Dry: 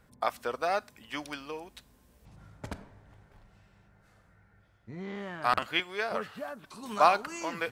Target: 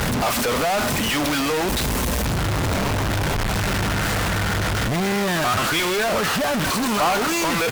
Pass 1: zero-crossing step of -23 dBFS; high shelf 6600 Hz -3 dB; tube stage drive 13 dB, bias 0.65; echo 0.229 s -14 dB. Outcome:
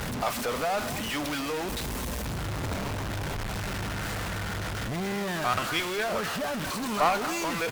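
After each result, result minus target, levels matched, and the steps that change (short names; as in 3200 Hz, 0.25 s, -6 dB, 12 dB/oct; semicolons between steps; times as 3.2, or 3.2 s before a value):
echo-to-direct +7.5 dB; zero-crossing step: distortion -5 dB
change: echo 0.229 s -21.5 dB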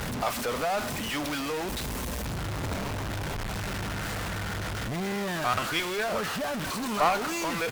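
zero-crossing step: distortion -5 dB
change: zero-crossing step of -12 dBFS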